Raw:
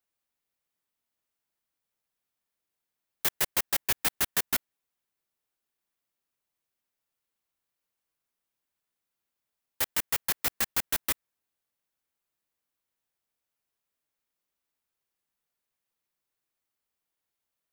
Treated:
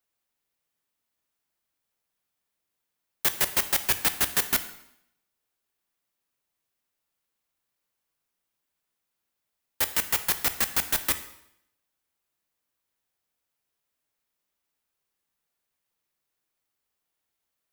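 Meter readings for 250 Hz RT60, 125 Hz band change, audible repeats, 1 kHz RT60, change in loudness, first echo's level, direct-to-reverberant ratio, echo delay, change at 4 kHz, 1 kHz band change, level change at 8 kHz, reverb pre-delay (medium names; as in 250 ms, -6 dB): 0.75 s, +3.5 dB, no echo, 0.75 s, +3.5 dB, no echo, 10.0 dB, no echo, +3.5 dB, +3.5 dB, +3.5 dB, 7 ms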